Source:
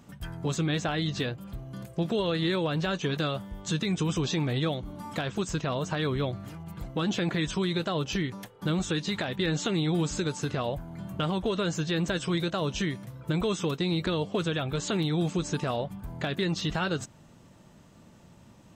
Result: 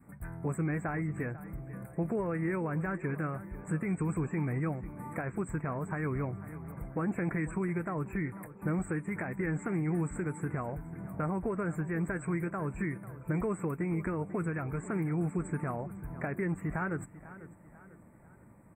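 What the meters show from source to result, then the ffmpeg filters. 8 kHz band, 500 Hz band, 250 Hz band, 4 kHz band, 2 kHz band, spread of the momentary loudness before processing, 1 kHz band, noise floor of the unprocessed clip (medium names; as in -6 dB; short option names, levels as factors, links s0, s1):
-13.0 dB, -6.0 dB, -4.0 dB, under -40 dB, -4.5 dB, 8 LU, -4.5 dB, -55 dBFS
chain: -filter_complex "[0:a]adynamicequalizer=threshold=0.00501:dfrequency=560:dqfactor=1.8:tfrequency=560:tqfactor=1.8:attack=5:release=100:ratio=0.375:range=3.5:mode=cutabove:tftype=bell,asuperstop=centerf=4400:order=20:qfactor=0.8,asplit=2[s0][s1];[s1]adelay=495,lowpass=f=4600:p=1,volume=0.158,asplit=2[s2][s3];[s3]adelay=495,lowpass=f=4600:p=1,volume=0.47,asplit=2[s4][s5];[s5]adelay=495,lowpass=f=4600:p=1,volume=0.47,asplit=2[s6][s7];[s7]adelay=495,lowpass=f=4600:p=1,volume=0.47[s8];[s0][s2][s4][s6][s8]amix=inputs=5:normalize=0,volume=0.668"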